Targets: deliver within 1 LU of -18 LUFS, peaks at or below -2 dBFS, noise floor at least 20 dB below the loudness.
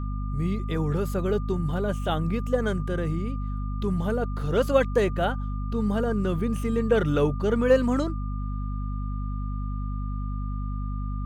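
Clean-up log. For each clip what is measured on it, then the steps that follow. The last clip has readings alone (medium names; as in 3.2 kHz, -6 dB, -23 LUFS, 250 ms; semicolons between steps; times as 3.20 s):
hum 50 Hz; highest harmonic 250 Hz; hum level -27 dBFS; steady tone 1.2 kHz; tone level -42 dBFS; loudness -27.0 LUFS; peak level -7.5 dBFS; loudness target -18.0 LUFS
-> de-hum 50 Hz, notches 5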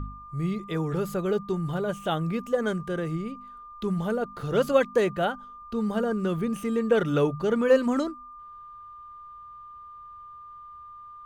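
hum not found; steady tone 1.2 kHz; tone level -42 dBFS
-> band-stop 1.2 kHz, Q 30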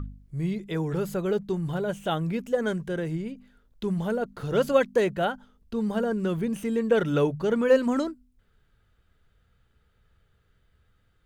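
steady tone not found; loudness -27.0 LUFS; peak level -9.0 dBFS; loudness target -18.0 LUFS
-> trim +9 dB; peak limiter -2 dBFS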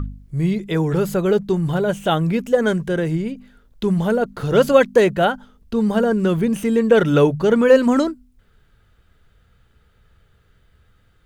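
loudness -18.5 LUFS; peak level -2.0 dBFS; noise floor -58 dBFS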